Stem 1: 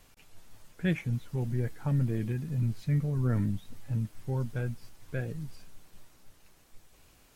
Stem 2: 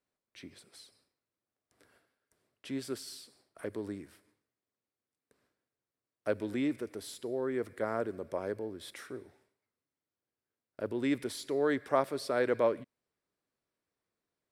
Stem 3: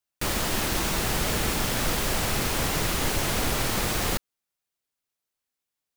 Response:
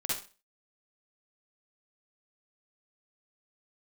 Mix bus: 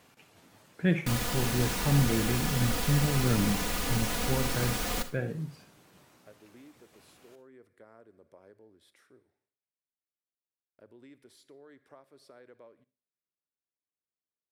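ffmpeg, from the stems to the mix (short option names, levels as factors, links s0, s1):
-filter_complex "[0:a]highpass=150,highshelf=f=3700:g=-8,volume=1.41,asplit=2[s0][s1];[s1]volume=0.211[s2];[1:a]acompressor=threshold=0.0224:ratio=6,volume=0.126,asplit=2[s3][s4];[s4]volume=0.0794[s5];[2:a]aecho=1:1:4.1:0.65,adelay=850,volume=0.376,asplit=2[s6][s7];[s7]volume=0.2[s8];[3:a]atrim=start_sample=2205[s9];[s2][s5][s8]amix=inputs=3:normalize=0[s10];[s10][s9]afir=irnorm=-1:irlink=0[s11];[s0][s3][s6][s11]amix=inputs=4:normalize=0"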